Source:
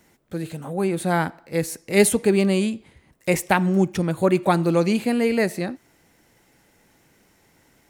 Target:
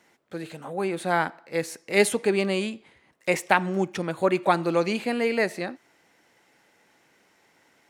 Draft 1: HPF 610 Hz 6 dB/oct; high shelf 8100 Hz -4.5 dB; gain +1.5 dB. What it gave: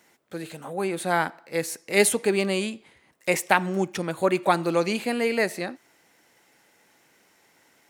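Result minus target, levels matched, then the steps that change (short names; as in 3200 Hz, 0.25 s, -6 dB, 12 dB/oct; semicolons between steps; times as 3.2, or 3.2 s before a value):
8000 Hz band +5.5 dB
change: high shelf 8100 Hz -15.5 dB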